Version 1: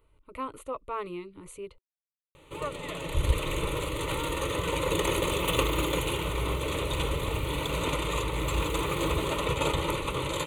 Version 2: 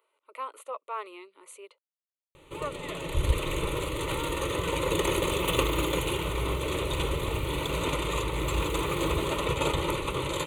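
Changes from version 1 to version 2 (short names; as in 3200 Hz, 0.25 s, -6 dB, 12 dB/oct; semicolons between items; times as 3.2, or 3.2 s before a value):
speech: add HPF 510 Hz 24 dB/oct; master: remove notch 370 Hz, Q 12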